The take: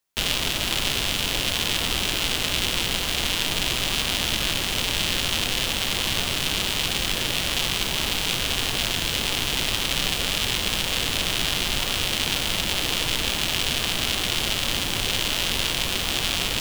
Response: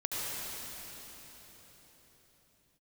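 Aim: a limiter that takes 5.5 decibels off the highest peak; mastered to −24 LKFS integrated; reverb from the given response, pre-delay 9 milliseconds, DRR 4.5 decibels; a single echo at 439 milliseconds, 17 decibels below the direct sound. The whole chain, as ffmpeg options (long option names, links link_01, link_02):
-filter_complex "[0:a]alimiter=limit=-10.5dB:level=0:latency=1,aecho=1:1:439:0.141,asplit=2[link_01][link_02];[1:a]atrim=start_sample=2205,adelay=9[link_03];[link_02][link_03]afir=irnorm=-1:irlink=0,volume=-11dB[link_04];[link_01][link_04]amix=inputs=2:normalize=0,volume=-0.5dB"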